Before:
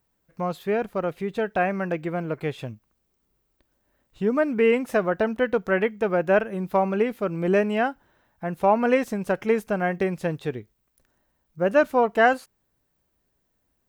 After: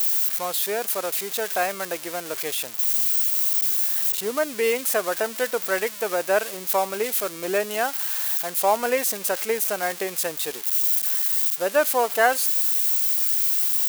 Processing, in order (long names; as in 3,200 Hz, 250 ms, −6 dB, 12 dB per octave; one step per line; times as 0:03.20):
spike at every zero crossing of −18 dBFS
high-pass filter 450 Hz 12 dB per octave